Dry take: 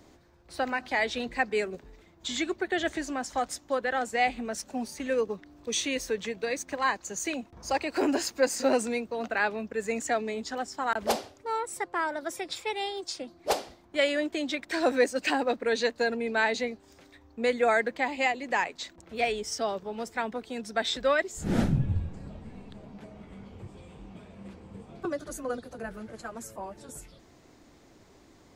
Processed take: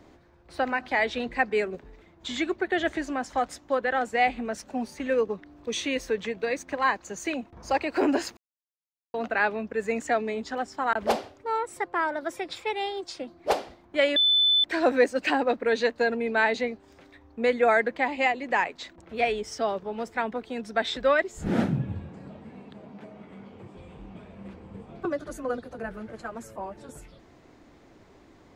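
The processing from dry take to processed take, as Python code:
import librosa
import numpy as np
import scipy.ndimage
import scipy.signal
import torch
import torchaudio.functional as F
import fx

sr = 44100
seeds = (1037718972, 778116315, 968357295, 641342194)

y = fx.highpass(x, sr, hz=150.0, slope=12, at=(21.49, 23.76))
y = fx.edit(y, sr, fx.silence(start_s=8.37, length_s=0.77),
    fx.bleep(start_s=14.16, length_s=0.48, hz=3510.0, db=-17.0), tone=tone)
y = fx.bass_treble(y, sr, bass_db=-1, treble_db=-10)
y = y * 10.0 ** (3.0 / 20.0)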